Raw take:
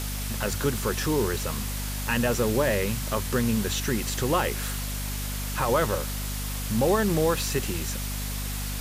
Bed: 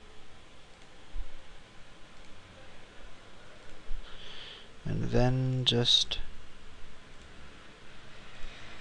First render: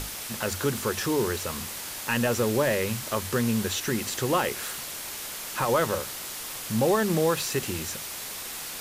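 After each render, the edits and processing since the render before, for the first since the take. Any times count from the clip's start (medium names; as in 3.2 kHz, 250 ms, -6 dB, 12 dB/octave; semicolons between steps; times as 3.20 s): hum notches 50/100/150/200/250 Hz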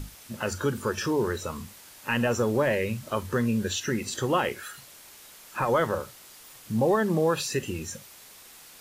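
noise print and reduce 13 dB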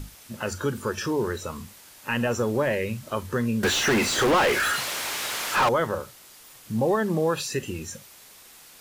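3.63–5.69 s: overdrive pedal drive 35 dB, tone 2.9 kHz, clips at -13.5 dBFS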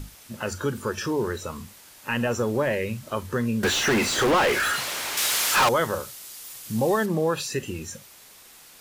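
5.17–7.06 s: treble shelf 3 kHz +10 dB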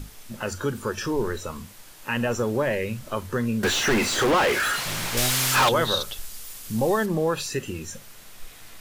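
add bed -3 dB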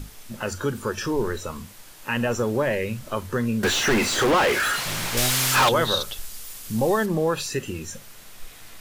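trim +1 dB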